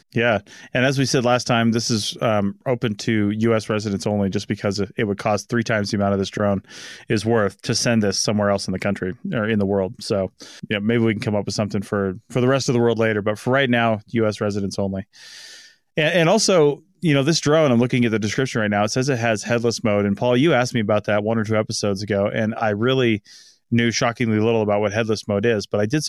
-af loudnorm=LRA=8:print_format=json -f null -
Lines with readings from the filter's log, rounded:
"input_i" : "-20.3",
"input_tp" : "-5.0",
"input_lra" : "3.1",
"input_thresh" : "-30.6",